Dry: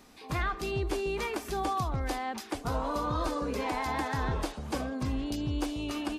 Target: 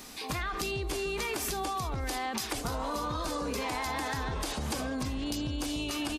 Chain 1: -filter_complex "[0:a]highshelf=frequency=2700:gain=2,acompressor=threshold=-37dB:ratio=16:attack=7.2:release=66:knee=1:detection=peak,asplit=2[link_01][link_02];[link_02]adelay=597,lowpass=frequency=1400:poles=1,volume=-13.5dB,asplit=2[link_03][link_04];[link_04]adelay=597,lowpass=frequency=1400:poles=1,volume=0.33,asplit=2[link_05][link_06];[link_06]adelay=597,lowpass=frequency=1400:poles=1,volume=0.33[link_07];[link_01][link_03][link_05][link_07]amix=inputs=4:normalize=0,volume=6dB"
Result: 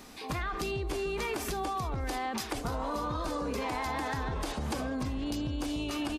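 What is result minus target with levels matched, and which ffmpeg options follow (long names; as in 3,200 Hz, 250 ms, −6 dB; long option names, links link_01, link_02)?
4,000 Hz band −3.5 dB
-filter_complex "[0:a]highshelf=frequency=2700:gain=10.5,acompressor=threshold=-37dB:ratio=16:attack=7.2:release=66:knee=1:detection=peak,asplit=2[link_01][link_02];[link_02]adelay=597,lowpass=frequency=1400:poles=1,volume=-13.5dB,asplit=2[link_03][link_04];[link_04]adelay=597,lowpass=frequency=1400:poles=1,volume=0.33,asplit=2[link_05][link_06];[link_06]adelay=597,lowpass=frequency=1400:poles=1,volume=0.33[link_07];[link_01][link_03][link_05][link_07]amix=inputs=4:normalize=0,volume=6dB"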